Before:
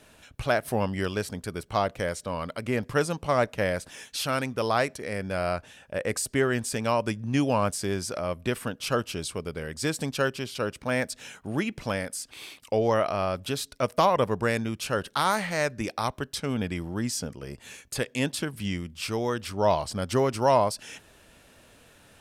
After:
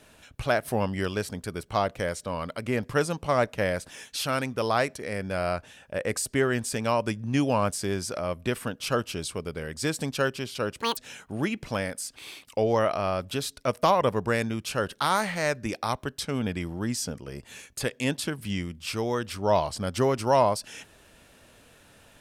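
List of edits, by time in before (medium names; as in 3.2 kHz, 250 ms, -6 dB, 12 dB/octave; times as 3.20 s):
10.79–11.12 s: speed 183%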